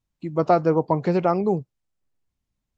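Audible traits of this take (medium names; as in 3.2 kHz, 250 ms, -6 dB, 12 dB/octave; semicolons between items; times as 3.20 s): noise floor -81 dBFS; spectral tilt -6.0 dB/octave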